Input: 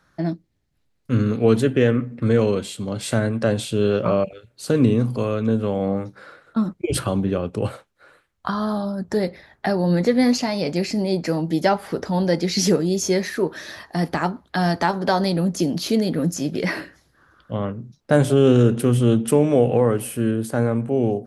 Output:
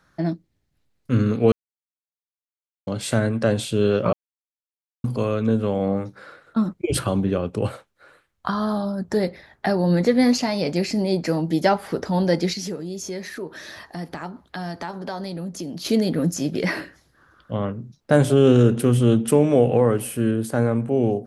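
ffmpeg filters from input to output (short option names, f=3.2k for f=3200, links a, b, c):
-filter_complex "[0:a]asettb=1/sr,asplit=3[a][b][c];[a]atrim=end=12.534[d];[b]atrim=start=12.53:end=15.85,asetpts=PTS-STARTPTS,afade=t=in:d=0.004:c=qsin,afade=t=out:st=3.316:d=0.004:c=qsin,acompressor=threshold=-36dB:ratio=2:attack=3.2:release=140:knee=1:detection=peak[e];[c]atrim=start=15.846[f];[d][e]acrossfade=d=0.004:c1=hsin:c2=qsin[g];[g][f]acrossfade=d=0.004:c1=qsin:c2=hsin,asplit=5[h][i][j][k][l];[h]atrim=end=1.52,asetpts=PTS-STARTPTS,afade=t=out:st=1.516:d=0.004:c=hsin[m];[i]atrim=start=1.52:end=2.87,asetpts=PTS-STARTPTS,volume=0[n];[j]atrim=start=2.87:end=4.13,asetpts=PTS-STARTPTS,afade=t=in:d=0.004:c=hsin,afade=t=out:st=1.256:d=0.004:c=hsin[o];[k]atrim=start=4.13:end=5.04,asetpts=PTS-STARTPTS,volume=0[p];[l]atrim=start=5.04,asetpts=PTS-STARTPTS,afade=t=in:d=0.004:c=hsin[q];[m][n][o][p][q]concat=n=5:v=0:a=1"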